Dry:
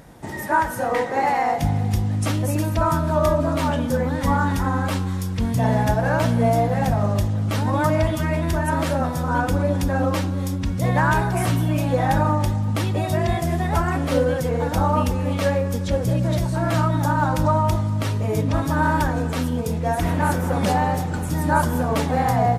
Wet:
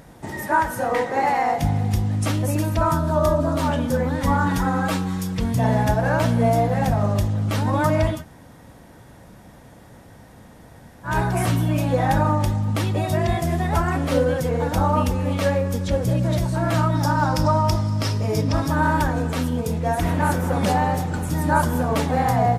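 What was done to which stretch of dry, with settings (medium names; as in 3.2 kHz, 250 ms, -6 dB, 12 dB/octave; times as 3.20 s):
2.94–3.64 s: peaking EQ 2.3 kHz -6.5 dB 0.76 oct
4.46–5.44 s: comb 6.2 ms, depth 67%
8.17–11.11 s: room tone, crossfade 0.16 s
16.95–18.68 s: peaking EQ 5.2 kHz +14.5 dB 0.27 oct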